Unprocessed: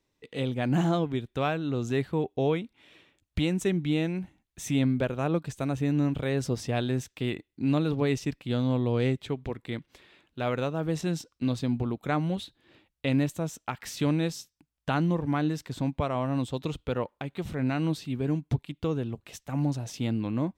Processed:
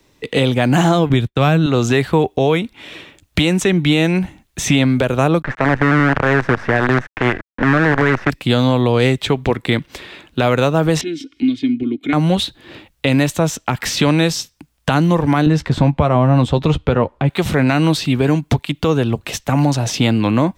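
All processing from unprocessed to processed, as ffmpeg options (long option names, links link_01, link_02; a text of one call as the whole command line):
ffmpeg -i in.wav -filter_complex "[0:a]asettb=1/sr,asplit=3[link_01][link_02][link_03];[link_01]atrim=end=1.094[link_04];[link_02]atrim=start=1.09:end=1.66,asetpts=PTS-STARTPTS,afade=type=in:duration=0.004:curve=qsin,afade=type=out:start_time=0.566:duration=0.004:curve=qsin,agate=range=-33dB:threshold=-38dB:ratio=3:release=100:detection=peak,bass=frequency=250:gain=14,treble=frequency=4000:gain=-1,bandreject=frequency=960:width=29[link_05];[link_03]atrim=start=1.656[link_06];[link_04][link_05]acrossfade=duration=0.004:curve1=hsin:curve2=qsin[link_07];[link_07][link_06]acrossfade=duration=0.004:curve1=qsin:curve2=hsin,asettb=1/sr,asplit=3[link_08][link_09][link_10];[link_08]atrim=end=5.424[link_11];[link_09]atrim=start=5.42:end=8.3,asetpts=PTS-STARTPTS,afade=type=in:duration=0.004:curve=qsin,afade=type=out:start_time=2.876:duration=0.004:curve=qsin,acrusher=bits=5:dc=4:mix=0:aa=0.000001,lowpass=frequency=1700:width_type=q:width=3.6[link_12];[link_10]atrim=start=8.296[link_13];[link_11][link_12]acrossfade=duration=0.004:curve1=hsin:curve2=qsin[link_14];[link_14][link_13]acrossfade=duration=0.004:curve1=qsin:curve2=hsin,asettb=1/sr,asplit=3[link_15][link_16][link_17];[link_15]atrim=end=11.014[link_18];[link_16]atrim=start=11.01:end=12.13,asetpts=PTS-STARTPTS,afade=type=in:duration=0.004:curve=qsin,afade=type=out:start_time=1.116:duration=0.004:curve=qsin,asplit=3[link_19][link_20][link_21];[link_19]bandpass=frequency=270:width_type=q:width=8,volume=0dB[link_22];[link_20]bandpass=frequency=2290:width_type=q:width=8,volume=-6dB[link_23];[link_21]bandpass=frequency=3010:width_type=q:width=8,volume=-9dB[link_24];[link_22][link_23][link_24]amix=inputs=3:normalize=0,aecho=1:1:2.8:0.69,atrim=end_sample=49392,acompressor=mode=upward:threshold=-42dB:ratio=2.5:attack=3.2:release=140:knee=2.83:detection=peak[link_25];[link_17]atrim=start=12.126[link_26];[link_18][link_25]acrossfade=duration=0.004:curve1=hsin:curve2=qsin[link_27];[link_27][link_26]acrossfade=duration=0.004:curve1=qsin:curve2=hsin,asettb=1/sr,asplit=3[link_28][link_29][link_30];[link_28]atrim=end=15.464[link_31];[link_29]atrim=start=15.46:end=17.29,asetpts=PTS-STARTPTS,afade=type=in:duration=0.004:curve=qsin,afade=type=out:start_time=1.826:duration=0.004:curve=qsin,aemphasis=mode=reproduction:type=riaa,asplit=2[link_32][link_33];[link_33]adelay=13,volume=-10.5dB[link_34];[link_32][link_34]amix=inputs=2:normalize=0,atrim=end_sample=80703[link_35];[link_30]atrim=start=17.286[link_36];[link_31][link_35]acrossfade=duration=0.004:curve1=hsin:curve2=qsin[link_37];[link_37][link_36]acrossfade=duration=0.004:curve1=qsin:curve2=hsin,acrossover=split=94|550|5700[link_38][link_39][link_40][link_41];[link_38]acompressor=threshold=-51dB:ratio=4[link_42];[link_39]acompressor=threshold=-37dB:ratio=4[link_43];[link_40]acompressor=threshold=-37dB:ratio=4[link_44];[link_41]acompressor=threshold=-53dB:ratio=4[link_45];[link_42][link_43][link_44][link_45]amix=inputs=4:normalize=0,alimiter=level_in=24.5dB:limit=-1dB:release=50:level=0:latency=1,volume=-3dB" out.wav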